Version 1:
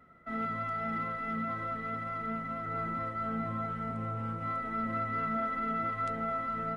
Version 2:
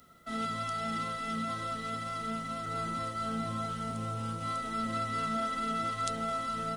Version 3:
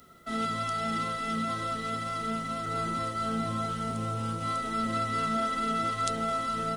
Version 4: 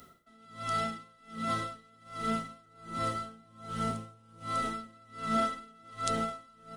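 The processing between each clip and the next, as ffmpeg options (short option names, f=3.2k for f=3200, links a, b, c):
-af "aexciter=amount=8.7:drive=5.6:freq=3.1k"
-af "equalizer=f=380:w=4.4:g=6,volume=3.5dB"
-af "aeval=exprs='val(0)*pow(10,-30*(0.5-0.5*cos(2*PI*1.3*n/s))/20)':c=same,volume=1.5dB"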